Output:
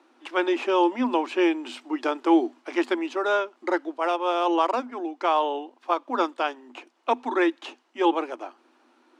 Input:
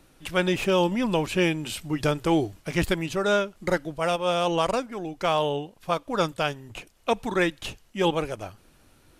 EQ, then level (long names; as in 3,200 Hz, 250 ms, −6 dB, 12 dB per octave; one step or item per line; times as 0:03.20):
Chebyshev high-pass with heavy ripple 240 Hz, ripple 9 dB
high-frequency loss of the air 100 metres
+6.0 dB